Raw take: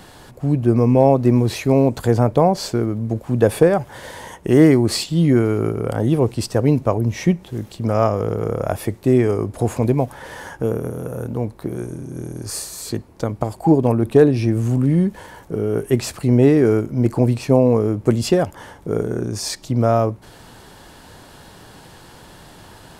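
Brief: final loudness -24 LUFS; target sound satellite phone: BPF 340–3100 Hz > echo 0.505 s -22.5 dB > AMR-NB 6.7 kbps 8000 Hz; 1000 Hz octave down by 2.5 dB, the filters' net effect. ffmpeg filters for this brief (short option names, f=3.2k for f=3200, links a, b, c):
-af "highpass=340,lowpass=3.1k,equalizer=f=1k:t=o:g=-3.5,aecho=1:1:505:0.075,volume=-1dB" -ar 8000 -c:a libopencore_amrnb -b:a 6700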